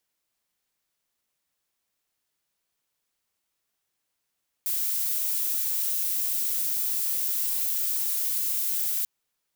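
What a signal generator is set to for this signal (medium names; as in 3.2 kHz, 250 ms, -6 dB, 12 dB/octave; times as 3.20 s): noise violet, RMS -27 dBFS 4.39 s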